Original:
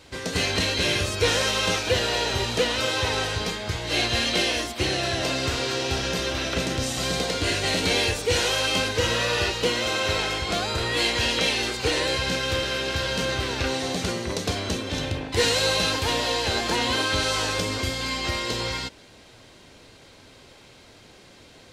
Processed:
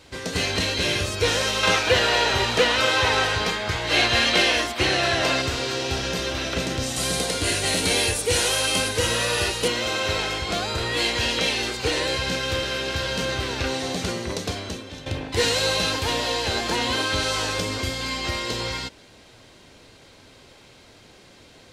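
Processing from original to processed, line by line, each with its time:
1.63–5.42 s: peaking EQ 1.4 kHz +7.5 dB 2.7 oct
6.96–9.68 s: peaking EQ 10 kHz +14 dB 0.62 oct
14.31–15.06 s: fade out, to -13.5 dB

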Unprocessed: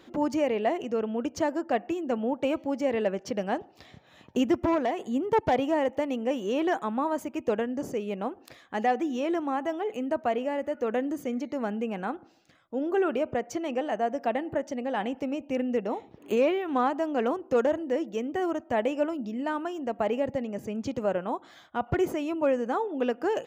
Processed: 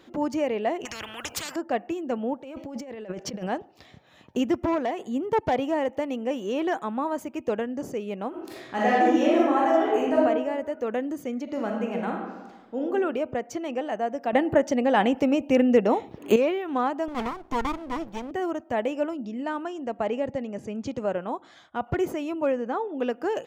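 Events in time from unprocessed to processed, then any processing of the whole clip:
0.85–1.56 s: spectrum-flattening compressor 10:1
2.41–3.49 s: compressor with a negative ratio -36 dBFS
8.29–10.16 s: reverb throw, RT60 1.2 s, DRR -7 dB
11.43–12.81 s: reverb throw, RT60 1.3 s, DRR 0.5 dB
14.33–16.36 s: gain +9 dB
17.08–18.31 s: comb filter that takes the minimum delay 0.88 ms
19.14–21.76 s: low-pass 10 kHz 24 dB/octave
22.52–22.99 s: distance through air 92 m

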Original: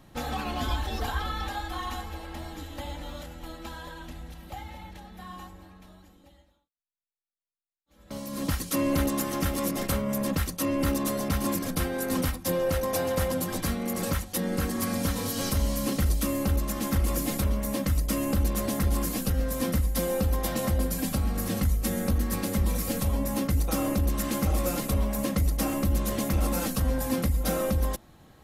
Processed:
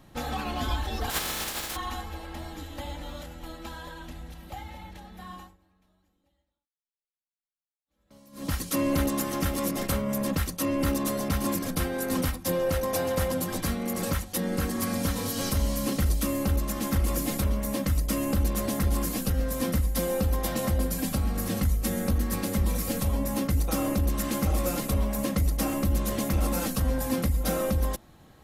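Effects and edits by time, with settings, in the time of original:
1.09–1.75 s: spectral contrast reduction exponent 0.23
5.34–8.55 s: dip -17 dB, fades 0.23 s

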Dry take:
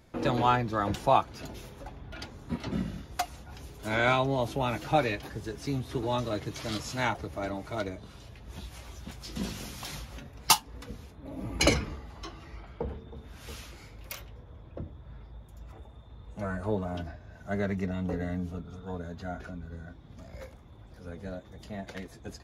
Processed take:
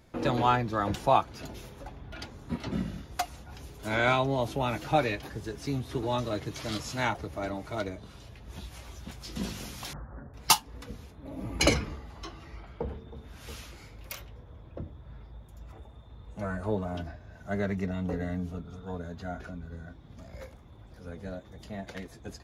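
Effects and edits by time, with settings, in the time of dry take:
9.93–10.34 s: steep low-pass 1.7 kHz 72 dB/octave

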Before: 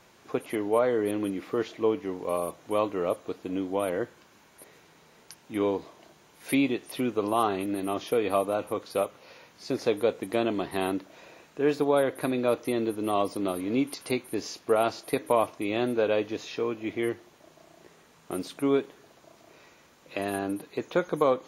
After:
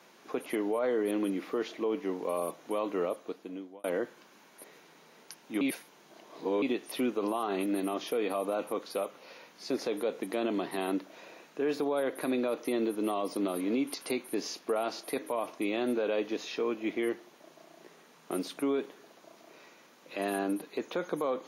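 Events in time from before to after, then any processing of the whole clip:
2.97–3.84 s: fade out linear
5.61–6.62 s: reverse
whole clip: high-pass 180 Hz 24 dB/octave; band-stop 7.7 kHz, Q 5.2; peak limiter -22 dBFS

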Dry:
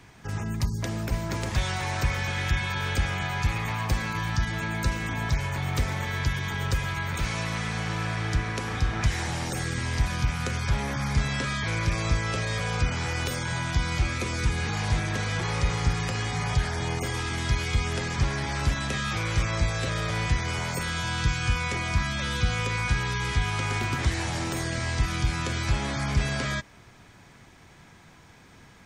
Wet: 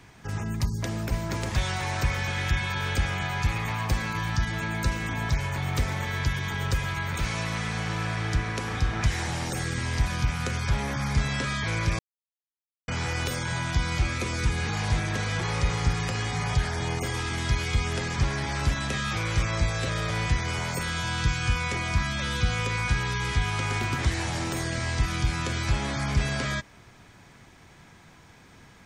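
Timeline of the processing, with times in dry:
11.99–12.88 s: mute

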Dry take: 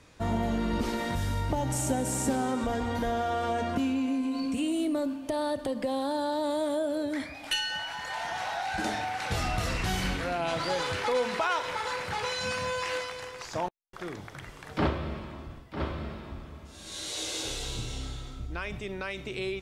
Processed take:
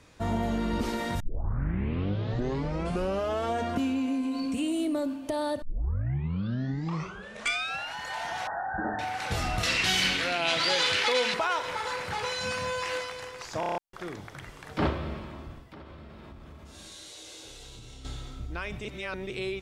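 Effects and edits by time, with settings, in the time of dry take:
1.20 s: tape start 2.32 s
5.62 s: tape start 2.35 s
8.47–8.99 s: brick-wall FIR low-pass 1.9 kHz
9.63–11.34 s: frequency weighting D
13.60 s: stutter in place 0.03 s, 6 plays
15.64–18.05 s: compression 12:1, threshold -42 dBFS
18.85–19.30 s: reverse

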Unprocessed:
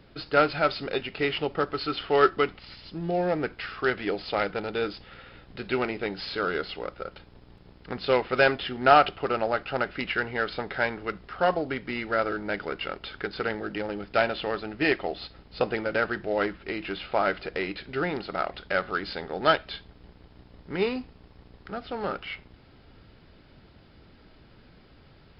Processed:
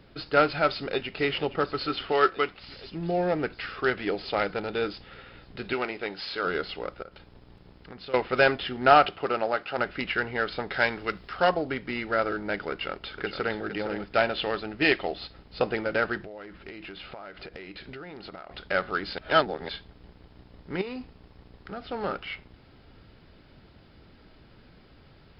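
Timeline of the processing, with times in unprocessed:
0.69–1.19 s: echo throw 470 ms, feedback 80%, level -13 dB
2.12–2.60 s: bass shelf 320 Hz -9 dB
5.73–6.45 s: bass shelf 260 Hz -11.5 dB
7.02–8.14 s: compression 2.5:1, threshold -44 dBFS
9.06–9.77 s: high-pass 110 Hz -> 380 Hz 6 dB/octave
10.71–11.50 s: treble shelf 2.5 kHz +9 dB
12.71–13.57 s: echo throw 460 ms, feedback 15%, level -8.5 dB
14.32–15.14 s: dynamic bell 3.4 kHz, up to +6 dB, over -41 dBFS, Q 1.1
16.17–18.51 s: compression 16:1, threshold -37 dBFS
19.18–19.69 s: reverse
20.81–21.80 s: compression 12:1, threshold -31 dBFS

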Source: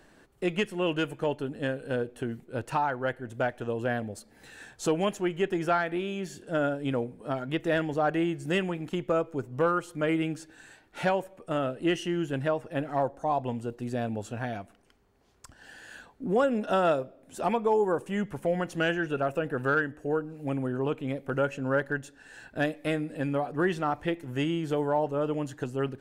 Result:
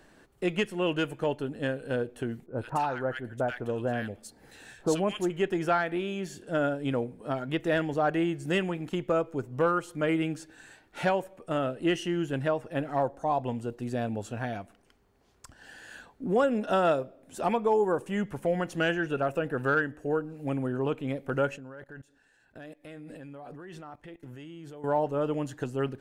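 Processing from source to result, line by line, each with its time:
2.46–5.30 s: bands offset in time lows, highs 80 ms, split 1.4 kHz
21.56–24.84 s: level held to a coarse grid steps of 22 dB

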